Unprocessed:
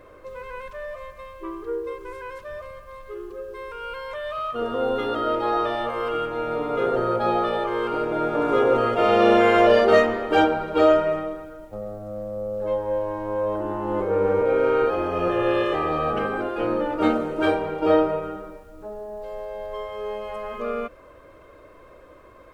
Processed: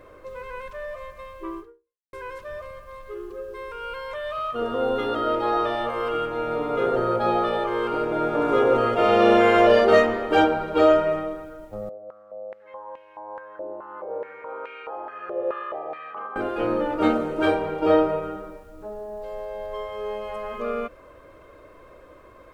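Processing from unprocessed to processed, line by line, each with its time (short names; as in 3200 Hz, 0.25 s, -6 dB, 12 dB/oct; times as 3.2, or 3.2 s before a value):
1.59–2.13 fade out exponential
11.89–16.36 stepped band-pass 4.7 Hz 540–2500 Hz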